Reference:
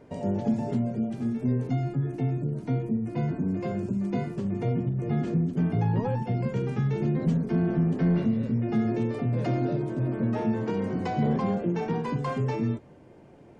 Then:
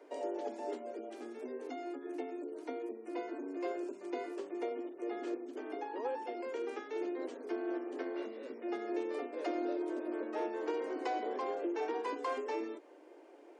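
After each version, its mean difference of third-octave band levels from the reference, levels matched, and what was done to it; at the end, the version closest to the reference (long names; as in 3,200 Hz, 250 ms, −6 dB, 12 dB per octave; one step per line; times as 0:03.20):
11.0 dB: downward compressor 2 to 1, threshold −28 dBFS, peak gain reduction 5 dB
Butterworth high-pass 290 Hz 72 dB per octave
level −2.5 dB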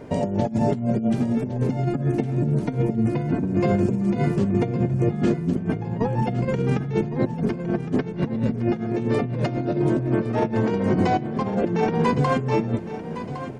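5.0 dB: compressor whose output falls as the input rises −30 dBFS, ratio −0.5
repeating echo 1,111 ms, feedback 46%, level −12 dB
level +8 dB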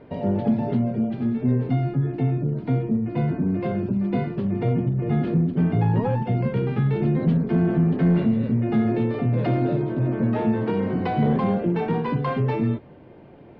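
1.0 dB: Butterworth low-pass 4,100 Hz 36 dB per octave
in parallel at −9 dB: asymmetric clip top −26 dBFS
on the sum: level +2.5 dB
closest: third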